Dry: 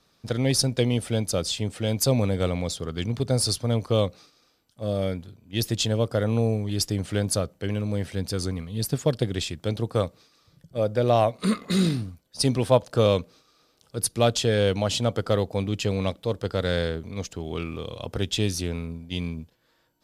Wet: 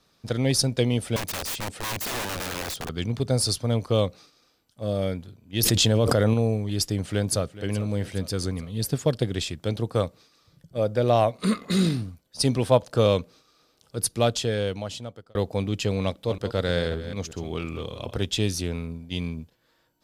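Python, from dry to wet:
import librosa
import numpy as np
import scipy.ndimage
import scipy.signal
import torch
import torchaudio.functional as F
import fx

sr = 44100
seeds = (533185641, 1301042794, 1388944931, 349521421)

y = fx.overflow_wrap(x, sr, gain_db=25.0, at=(1.16, 2.89))
y = fx.env_flatten(y, sr, amount_pct=100, at=(5.63, 6.34))
y = fx.echo_throw(y, sr, start_s=6.85, length_s=0.81, ms=420, feedback_pct=55, wet_db=-16.0)
y = fx.reverse_delay(y, sr, ms=187, wet_db=-11.0, at=(16.01, 18.26))
y = fx.edit(y, sr, fx.fade_out_span(start_s=14.08, length_s=1.27), tone=tone)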